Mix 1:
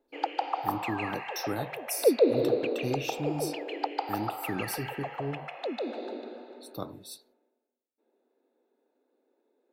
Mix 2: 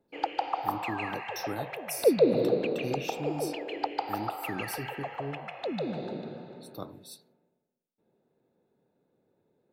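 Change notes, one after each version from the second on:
speech -3.0 dB; background: remove brick-wall FIR high-pass 230 Hz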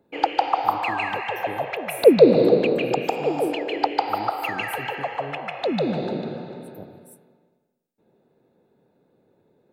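speech: add inverse Chebyshev band-stop 1.6–3.9 kHz, stop band 60 dB; background +9.5 dB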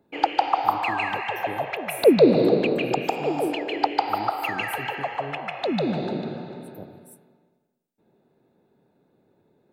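background: add peaking EQ 500 Hz -5.5 dB 0.3 oct

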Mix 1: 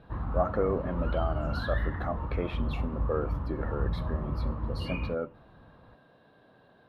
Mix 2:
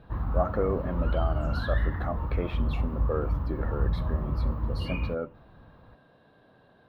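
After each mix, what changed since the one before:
background: remove distance through air 80 m; master: add bass shelf 98 Hz +5.5 dB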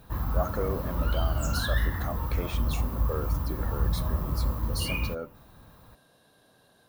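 speech -5.0 dB; master: remove distance through air 430 m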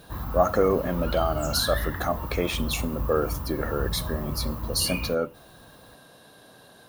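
speech +10.5 dB; master: add bass shelf 98 Hz -5.5 dB

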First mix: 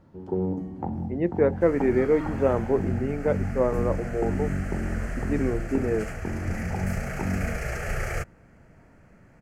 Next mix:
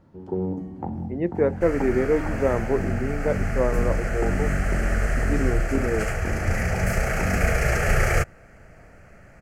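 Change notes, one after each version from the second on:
second sound +9.0 dB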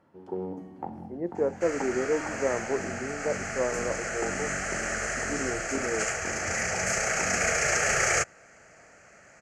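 speech: add Gaussian low-pass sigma 6.5 samples; second sound: add resonant low-pass 6.8 kHz, resonance Q 4; master: add high-pass 620 Hz 6 dB/octave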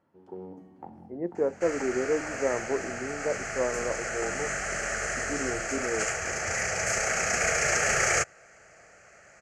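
first sound -7.5 dB

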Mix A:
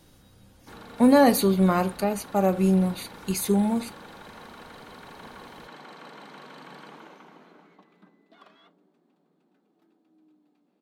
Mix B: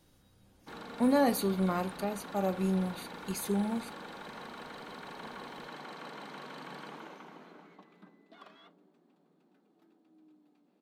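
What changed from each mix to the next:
speech -10.5 dB; reverb: on, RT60 0.55 s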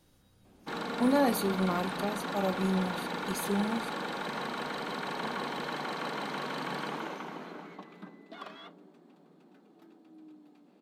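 background +9.5 dB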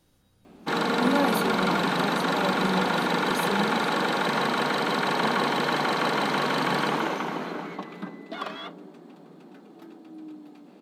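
background +11.0 dB

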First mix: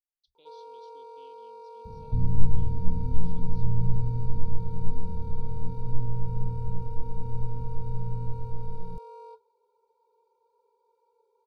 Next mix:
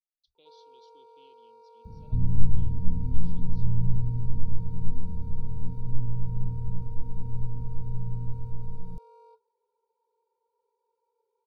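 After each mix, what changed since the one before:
first sound -8.5 dB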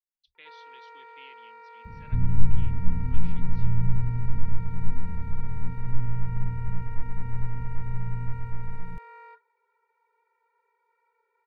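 master: remove Chebyshev band-stop 690–4600 Hz, order 2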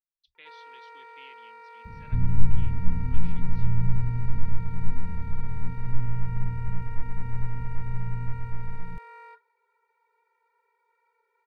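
first sound: add treble shelf 4.6 kHz +10 dB

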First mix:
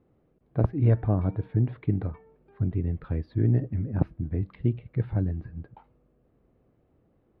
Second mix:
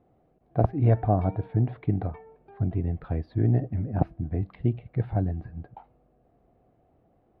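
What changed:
background +5.5 dB; master: add peaking EQ 720 Hz +13 dB 0.38 oct

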